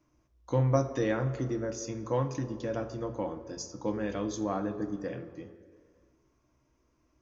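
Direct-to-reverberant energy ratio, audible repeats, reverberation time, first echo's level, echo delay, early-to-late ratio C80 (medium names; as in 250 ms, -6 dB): 7.0 dB, no echo, 2.2 s, no echo, no echo, 12.5 dB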